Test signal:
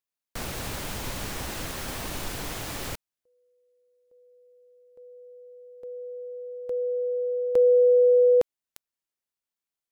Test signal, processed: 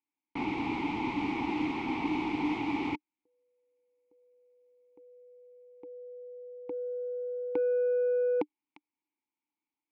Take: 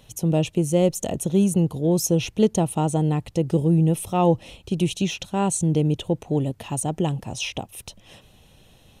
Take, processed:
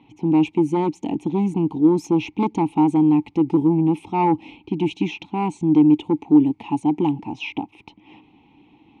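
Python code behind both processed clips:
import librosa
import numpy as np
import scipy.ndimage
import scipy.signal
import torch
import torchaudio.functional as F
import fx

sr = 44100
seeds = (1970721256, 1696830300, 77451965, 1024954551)

y = fx.fold_sine(x, sr, drive_db=7, ceiling_db=-6.0)
y = fx.vowel_filter(y, sr, vowel='u')
y = fx.env_lowpass(y, sr, base_hz=3000.0, full_db=-18.5)
y = F.gain(torch.from_numpy(y), 5.5).numpy()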